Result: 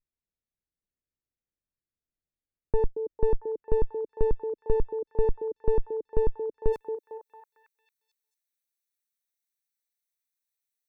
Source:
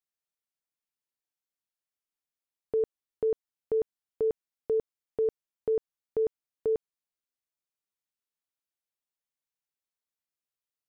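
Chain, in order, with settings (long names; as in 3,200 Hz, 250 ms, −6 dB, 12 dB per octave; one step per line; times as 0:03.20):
lower of the sound and its delayed copy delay 0.49 ms
spectral tilt −4 dB per octave, from 0:06.72 +3 dB per octave
echo through a band-pass that steps 226 ms, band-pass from 420 Hz, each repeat 0.7 octaves, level −4.5 dB
level −3 dB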